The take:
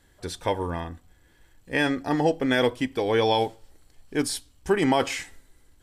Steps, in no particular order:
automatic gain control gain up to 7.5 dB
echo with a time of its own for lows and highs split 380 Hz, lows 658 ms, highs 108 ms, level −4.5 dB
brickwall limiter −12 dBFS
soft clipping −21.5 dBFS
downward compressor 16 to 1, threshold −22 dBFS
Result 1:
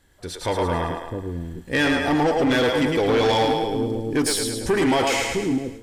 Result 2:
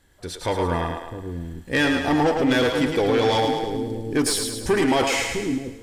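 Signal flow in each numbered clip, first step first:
brickwall limiter, then echo with a time of its own for lows and highs, then soft clipping, then downward compressor, then automatic gain control
soft clipping, then downward compressor, then automatic gain control, then echo with a time of its own for lows and highs, then brickwall limiter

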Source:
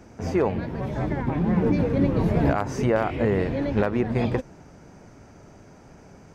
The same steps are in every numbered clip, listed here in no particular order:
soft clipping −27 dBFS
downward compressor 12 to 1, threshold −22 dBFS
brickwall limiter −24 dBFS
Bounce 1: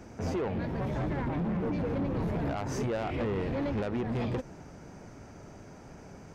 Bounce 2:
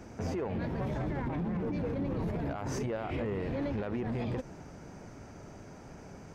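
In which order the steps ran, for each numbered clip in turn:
downward compressor, then soft clipping, then brickwall limiter
downward compressor, then brickwall limiter, then soft clipping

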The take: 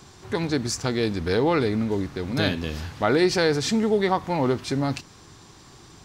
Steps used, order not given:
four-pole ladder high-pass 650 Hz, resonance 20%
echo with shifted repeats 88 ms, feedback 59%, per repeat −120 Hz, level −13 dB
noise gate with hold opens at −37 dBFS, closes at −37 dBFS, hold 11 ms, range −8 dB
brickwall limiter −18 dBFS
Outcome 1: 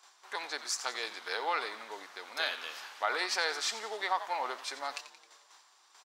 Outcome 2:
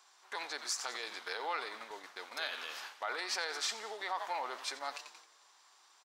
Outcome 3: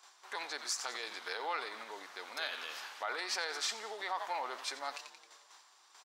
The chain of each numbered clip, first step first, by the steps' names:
noise gate with hold, then echo with shifted repeats, then four-pole ladder high-pass, then brickwall limiter
echo with shifted repeats, then brickwall limiter, then four-pole ladder high-pass, then noise gate with hold
noise gate with hold, then echo with shifted repeats, then brickwall limiter, then four-pole ladder high-pass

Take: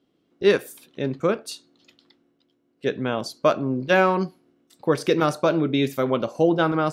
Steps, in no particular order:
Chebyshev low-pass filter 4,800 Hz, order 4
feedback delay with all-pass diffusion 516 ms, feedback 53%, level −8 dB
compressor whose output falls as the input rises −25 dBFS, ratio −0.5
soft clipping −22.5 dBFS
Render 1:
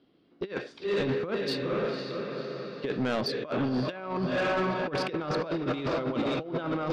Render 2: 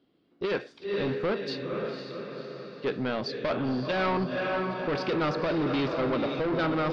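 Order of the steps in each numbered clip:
feedback delay with all-pass diffusion, then compressor whose output falls as the input rises, then Chebyshev low-pass filter, then soft clipping
feedback delay with all-pass diffusion, then soft clipping, then compressor whose output falls as the input rises, then Chebyshev low-pass filter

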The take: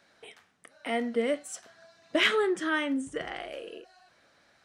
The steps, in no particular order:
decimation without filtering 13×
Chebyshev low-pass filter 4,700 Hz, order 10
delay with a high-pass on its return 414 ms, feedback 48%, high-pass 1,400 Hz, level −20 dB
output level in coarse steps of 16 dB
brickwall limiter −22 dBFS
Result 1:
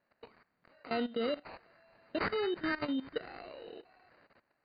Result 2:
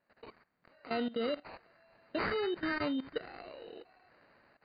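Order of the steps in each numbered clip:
brickwall limiter, then delay with a high-pass on its return, then decimation without filtering, then Chebyshev low-pass filter, then output level in coarse steps
brickwall limiter, then delay with a high-pass on its return, then output level in coarse steps, then decimation without filtering, then Chebyshev low-pass filter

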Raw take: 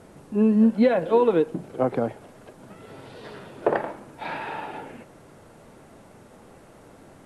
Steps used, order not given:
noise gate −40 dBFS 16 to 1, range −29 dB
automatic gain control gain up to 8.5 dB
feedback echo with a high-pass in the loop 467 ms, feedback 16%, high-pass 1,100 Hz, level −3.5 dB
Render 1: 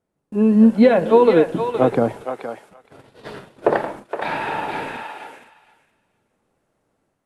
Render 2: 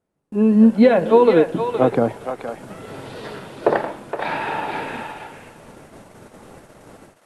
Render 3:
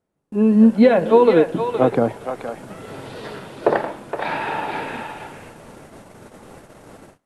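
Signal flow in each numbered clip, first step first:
noise gate, then automatic gain control, then feedback echo with a high-pass in the loop
automatic gain control, then noise gate, then feedback echo with a high-pass in the loop
automatic gain control, then feedback echo with a high-pass in the loop, then noise gate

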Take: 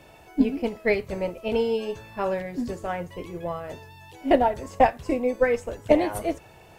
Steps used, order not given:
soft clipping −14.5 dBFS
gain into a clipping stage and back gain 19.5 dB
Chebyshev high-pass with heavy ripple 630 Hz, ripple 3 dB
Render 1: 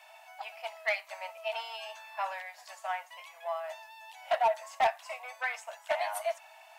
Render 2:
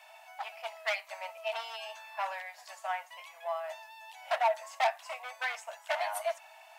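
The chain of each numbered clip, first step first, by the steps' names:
soft clipping, then Chebyshev high-pass with heavy ripple, then gain into a clipping stage and back
gain into a clipping stage and back, then soft clipping, then Chebyshev high-pass with heavy ripple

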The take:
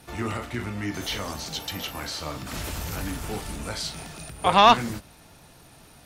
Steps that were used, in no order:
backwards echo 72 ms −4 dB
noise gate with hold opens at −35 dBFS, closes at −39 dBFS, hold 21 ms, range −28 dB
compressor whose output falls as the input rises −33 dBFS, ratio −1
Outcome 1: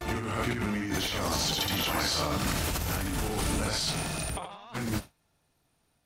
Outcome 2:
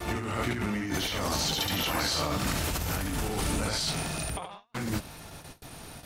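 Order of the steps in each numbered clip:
noise gate with hold, then backwards echo, then compressor whose output falls as the input rises
backwards echo, then compressor whose output falls as the input rises, then noise gate with hold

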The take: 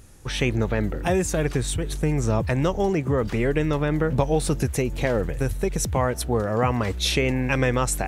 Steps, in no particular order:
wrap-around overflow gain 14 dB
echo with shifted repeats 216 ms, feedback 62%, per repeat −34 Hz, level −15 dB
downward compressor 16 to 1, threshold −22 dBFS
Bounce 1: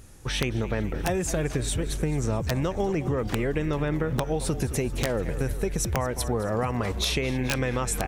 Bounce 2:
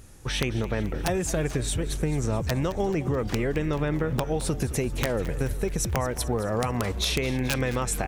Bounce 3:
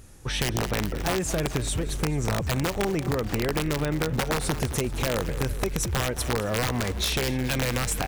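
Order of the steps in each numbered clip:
echo with shifted repeats, then downward compressor, then wrap-around overflow
downward compressor, then wrap-around overflow, then echo with shifted repeats
wrap-around overflow, then echo with shifted repeats, then downward compressor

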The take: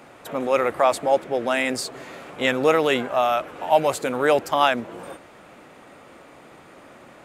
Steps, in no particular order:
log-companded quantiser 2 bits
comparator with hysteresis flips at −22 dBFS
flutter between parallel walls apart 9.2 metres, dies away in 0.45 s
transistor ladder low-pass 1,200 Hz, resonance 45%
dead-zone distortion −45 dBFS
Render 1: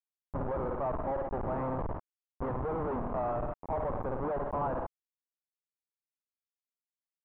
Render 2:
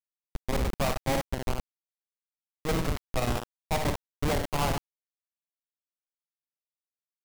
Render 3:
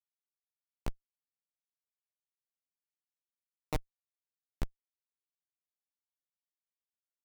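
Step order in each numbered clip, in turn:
comparator with hysteresis, then dead-zone distortion, then flutter between parallel walls, then log-companded quantiser, then transistor ladder low-pass
transistor ladder low-pass, then comparator with hysteresis, then flutter between parallel walls, then dead-zone distortion, then log-companded quantiser
transistor ladder low-pass, then dead-zone distortion, then flutter between parallel walls, then log-companded quantiser, then comparator with hysteresis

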